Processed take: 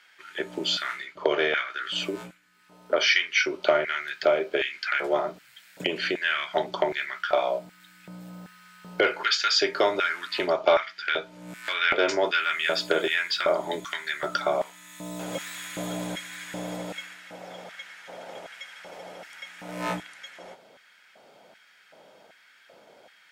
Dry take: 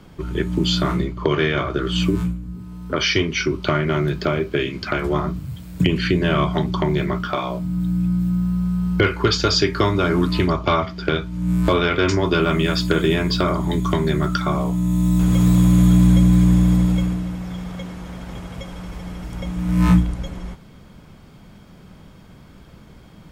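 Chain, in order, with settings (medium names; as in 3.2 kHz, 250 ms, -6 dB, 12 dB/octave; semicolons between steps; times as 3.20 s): treble shelf 10 kHz -7 dB; LFO high-pass square 1.3 Hz 590–1700 Hz; peaking EQ 1.1 kHz -10 dB 0.28 oct; trim -3 dB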